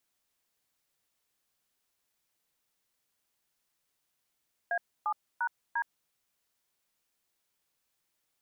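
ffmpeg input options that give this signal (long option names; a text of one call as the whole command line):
ffmpeg -f lavfi -i "aevalsrc='0.0316*clip(min(mod(t,0.348),0.068-mod(t,0.348))/0.002,0,1)*(eq(floor(t/0.348),0)*(sin(2*PI*697*mod(t,0.348))+sin(2*PI*1633*mod(t,0.348)))+eq(floor(t/0.348),1)*(sin(2*PI*852*mod(t,0.348))+sin(2*PI*1209*mod(t,0.348)))+eq(floor(t/0.348),2)*(sin(2*PI*941*mod(t,0.348))+sin(2*PI*1477*mod(t,0.348)))+eq(floor(t/0.348),3)*(sin(2*PI*941*mod(t,0.348))+sin(2*PI*1633*mod(t,0.348))))':duration=1.392:sample_rate=44100" out.wav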